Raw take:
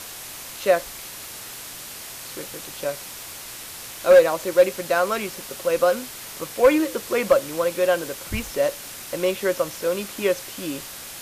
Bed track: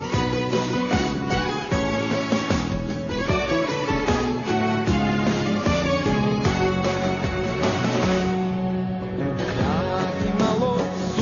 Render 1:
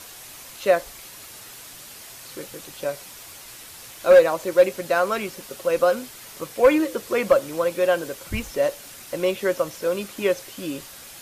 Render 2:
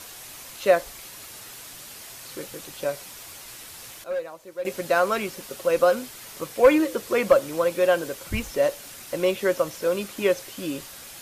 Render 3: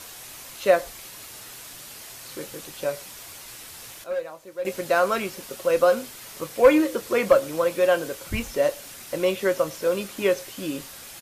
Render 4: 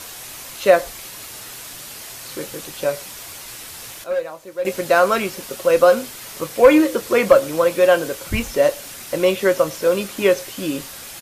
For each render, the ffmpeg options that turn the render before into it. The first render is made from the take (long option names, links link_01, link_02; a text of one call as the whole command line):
ffmpeg -i in.wav -af "afftdn=noise_reduction=6:noise_floor=-38" out.wav
ffmpeg -i in.wav -filter_complex "[0:a]asplit=3[link_01][link_02][link_03];[link_01]atrim=end=4.04,asetpts=PTS-STARTPTS,afade=type=out:start_time=3.9:duration=0.14:curve=log:silence=0.149624[link_04];[link_02]atrim=start=4.04:end=4.65,asetpts=PTS-STARTPTS,volume=-16.5dB[link_05];[link_03]atrim=start=4.65,asetpts=PTS-STARTPTS,afade=type=in:duration=0.14:curve=log:silence=0.149624[link_06];[link_04][link_05][link_06]concat=n=3:v=0:a=1" out.wav
ffmpeg -i in.wav -filter_complex "[0:a]asplit=2[link_01][link_02];[link_02]adelay=26,volume=-12.5dB[link_03];[link_01][link_03]amix=inputs=2:normalize=0,asplit=2[link_04][link_05];[link_05]adelay=105,volume=-27dB,highshelf=frequency=4000:gain=-2.36[link_06];[link_04][link_06]amix=inputs=2:normalize=0" out.wav
ffmpeg -i in.wav -af "volume=6dB,alimiter=limit=-2dB:level=0:latency=1" out.wav